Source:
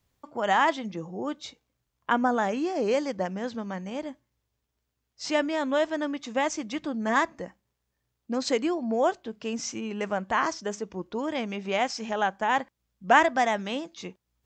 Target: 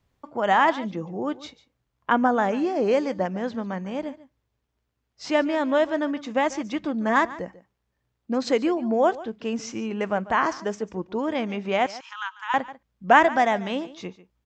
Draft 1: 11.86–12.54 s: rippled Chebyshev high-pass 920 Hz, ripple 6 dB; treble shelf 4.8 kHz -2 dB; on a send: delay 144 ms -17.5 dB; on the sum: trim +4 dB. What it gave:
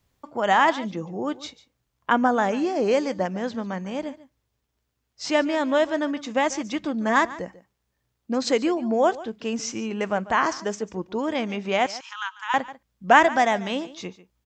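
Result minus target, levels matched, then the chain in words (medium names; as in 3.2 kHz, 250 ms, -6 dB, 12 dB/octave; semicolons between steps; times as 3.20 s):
8 kHz band +6.5 dB
11.86–12.54 s: rippled Chebyshev high-pass 920 Hz, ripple 6 dB; treble shelf 4.8 kHz -12.5 dB; on a send: delay 144 ms -17.5 dB; on the sum: trim +4 dB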